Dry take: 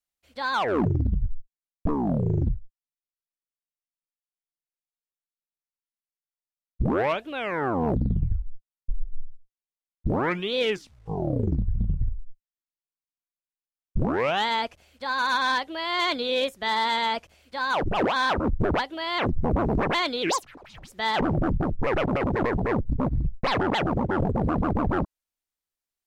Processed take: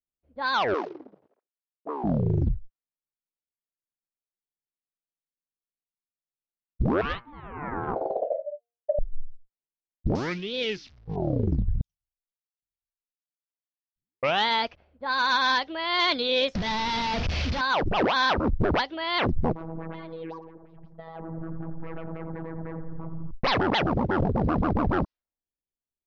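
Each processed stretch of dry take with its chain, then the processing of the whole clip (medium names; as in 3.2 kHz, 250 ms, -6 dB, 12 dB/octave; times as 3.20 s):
0.74–2.04 s: companding laws mixed up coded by A + high-pass 410 Hz 24 dB/octave
7.01–8.99 s: de-hum 118.9 Hz, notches 20 + ring modulator 590 Hz + upward expansion, over -37 dBFS
10.15–11.16 s: zero-crossing glitches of -26.5 dBFS + peaking EQ 940 Hz -9.5 dB 2.5 oct
11.81–14.23 s: inverse Chebyshev high-pass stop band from 1.5 kHz, stop band 70 dB + delay 812 ms -10 dB
16.55–17.61 s: one-bit comparator + tone controls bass +12 dB, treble -2 dB + compression 12:1, threshold -24 dBFS
19.52–23.31 s: robot voice 163 Hz + compression 16:1, threshold -32 dBFS + bucket-brigade echo 86 ms, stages 1024, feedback 69%, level -9 dB
whole clip: level-controlled noise filter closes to 430 Hz, open at -21.5 dBFS; steep low-pass 5.7 kHz 48 dB/octave; treble shelf 4.5 kHz +8.5 dB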